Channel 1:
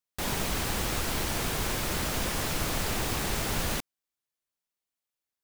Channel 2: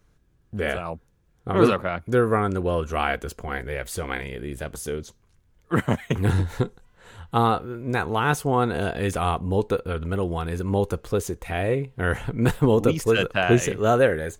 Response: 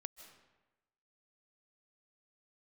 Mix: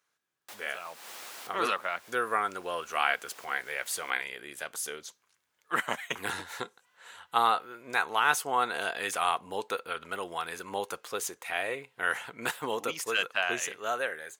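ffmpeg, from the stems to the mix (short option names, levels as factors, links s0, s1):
-filter_complex "[0:a]adelay=300,volume=0.282[s0];[1:a]equalizer=f=480:t=o:w=1.9:g=-6,dynaudnorm=f=280:g=11:m=2.37,volume=0.562,asplit=2[s1][s2];[s2]apad=whole_len=252787[s3];[s0][s3]sidechaincompress=threshold=0.00891:ratio=6:attack=7.4:release=228[s4];[s4][s1]amix=inputs=2:normalize=0,highpass=680"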